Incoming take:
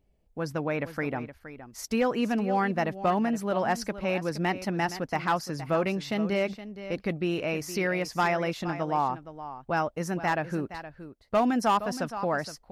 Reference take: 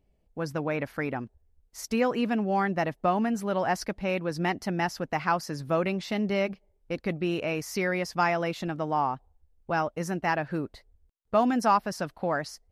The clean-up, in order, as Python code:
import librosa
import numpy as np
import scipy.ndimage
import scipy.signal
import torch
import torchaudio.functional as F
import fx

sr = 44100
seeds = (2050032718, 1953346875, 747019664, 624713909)

y = fx.fix_declip(x, sr, threshold_db=-17.0)
y = fx.fix_echo_inverse(y, sr, delay_ms=468, level_db=-13.0)